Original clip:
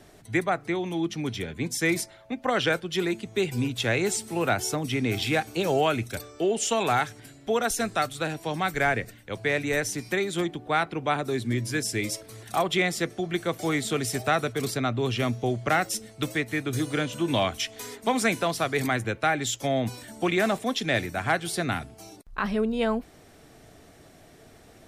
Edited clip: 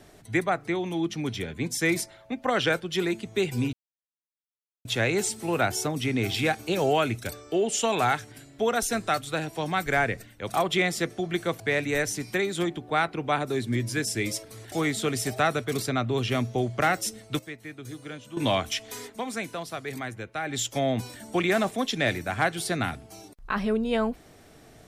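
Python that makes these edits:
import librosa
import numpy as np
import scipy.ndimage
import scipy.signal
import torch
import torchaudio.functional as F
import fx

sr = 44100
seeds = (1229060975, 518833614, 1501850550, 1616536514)

y = fx.edit(x, sr, fx.insert_silence(at_s=3.73, length_s=1.12),
    fx.move(start_s=12.5, length_s=1.1, to_s=9.38),
    fx.clip_gain(start_s=16.27, length_s=0.98, db=-12.0),
    fx.fade_down_up(start_s=17.92, length_s=1.55, db=-8.5, fade_s=0.17), tone=tone)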